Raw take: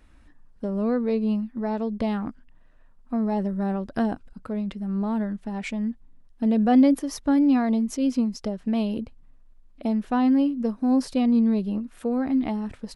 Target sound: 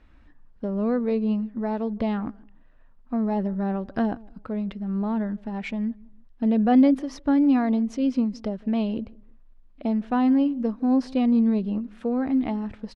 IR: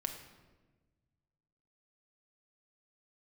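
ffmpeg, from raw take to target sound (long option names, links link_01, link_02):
-filter_complex "[0:a]lowpass=3900,asplit=2[link_01][link_02];[link_02]adelay=161,lowpass=frequency=840:poles=1,volume=-22.5dB,asplit=2[link_03][link_04];[link_04]adelay=161,lowpass=frequency=840:poles=1,volume=0.32[link_05];[link_01][link_03][link_05]amix=inputs=3:normalize=0"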